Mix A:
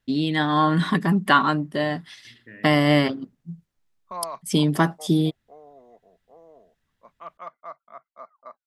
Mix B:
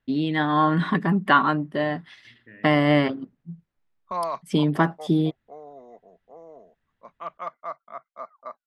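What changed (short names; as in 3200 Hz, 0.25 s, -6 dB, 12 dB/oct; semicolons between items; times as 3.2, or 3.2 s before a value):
first voice: add tone controls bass -2 dB, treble -15 dB; second voice -3.5 dB; background +5.0 dB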